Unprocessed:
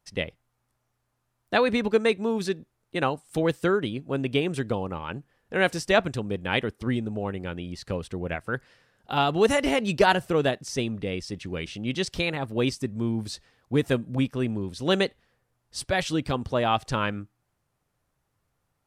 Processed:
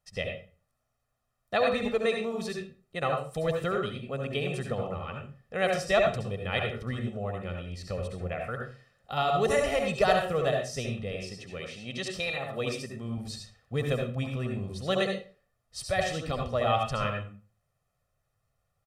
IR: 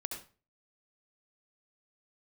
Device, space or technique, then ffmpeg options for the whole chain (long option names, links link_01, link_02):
microphone above a desk: -filter_complex "[0:a]asettb=1/sr,asplit=3[link_01][link_02][link_03];[link_01]atrim=end=11.124[link_04];[link_02]atrim=start=11.12:end=13.18,asetpts=PTS-STARTPTS,afade=type=in:duration=0.004:curve=qsin,afade=type=out:start_time=2.056:duration=0.004:curve=qsin,highpass=frequency=220:poles=1[link_05];[link_03]atrim=start=13.176[link_06];[link_04][link_05]acrossfade=duration=0.004:curve1=hsin:curve2=qsin[link_07];[link_07][link_06]acrossfade=duration=0.004:curve1=qsin:curve2=hsin,aecho=1:1:1.6:0.73[link_08];[1:a]atrim=start_sample=2205[link_09];[link_08][link_09]afir=irnorm=-1:irlink=0,volume=-5dB"